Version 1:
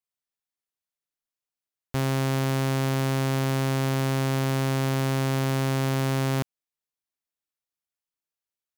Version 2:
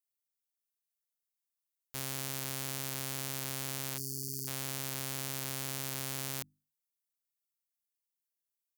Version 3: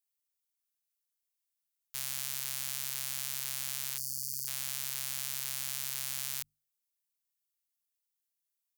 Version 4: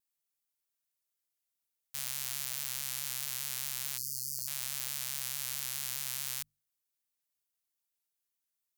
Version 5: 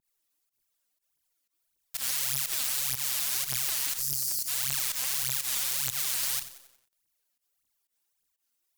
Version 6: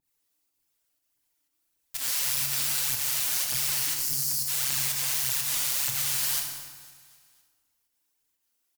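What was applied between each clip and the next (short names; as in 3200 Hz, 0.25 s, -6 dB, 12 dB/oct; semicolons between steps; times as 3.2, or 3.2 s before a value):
spectral delete 3.98–4.48, 480–4300 Hz; pre-emphasis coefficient 0.9; notches 50/100/150/200/250/300 Hz
passive tone stack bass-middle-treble 10-0-10; gain +3 dB
vibrato 4.7 Hz 85 cents
phaser 1.7 Hz, delay 4.4 ms, feedback 79%; pump 122 bpm, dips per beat 1, -18 dB, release 93 ms; lo-fi delay 92 ms, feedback 55%, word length 8-bit, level -14 dB; gain +3.5 dB
feedback echo 0.254 s, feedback 51%, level -18.5 dB; FDN reverb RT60 1.4 s, low-frequency decay 1.3×, high-frequency decay 0.7×, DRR 0.5 dB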